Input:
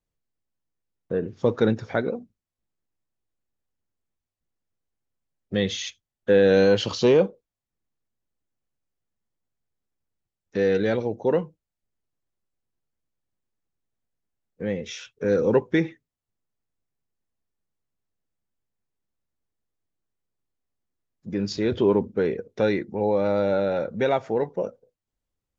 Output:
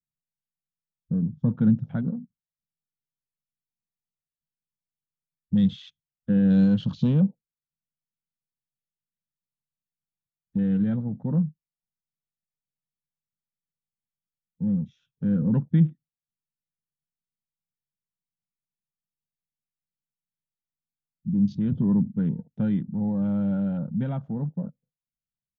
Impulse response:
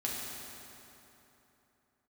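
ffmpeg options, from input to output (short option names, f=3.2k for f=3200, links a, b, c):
-af "afwtdn=0.0141,firequalizer=gain_entry='entry(100,0);entry(150,13);entry(260,1);entry(370,-21);entry(530,-17);entry(750,-15);entry(1400,-13);entry(2100,-22);entry(3400,-10);entry(4800,-20)':delay=0.05:min_phase=1"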